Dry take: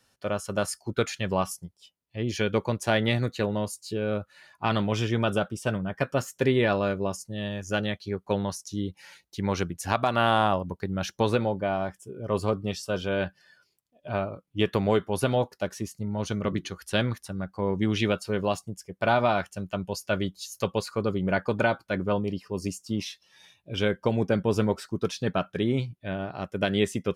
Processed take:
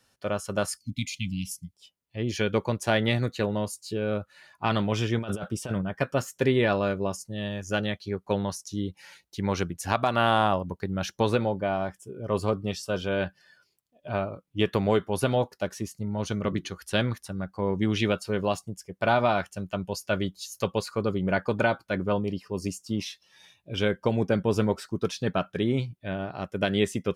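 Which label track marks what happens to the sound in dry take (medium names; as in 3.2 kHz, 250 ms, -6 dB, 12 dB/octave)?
0.770000	1.740000	spectral selection erased 280–2000 Hz
5.190000	5.820000	compressor with a negative ratio -29 dBFS, ratio -0.5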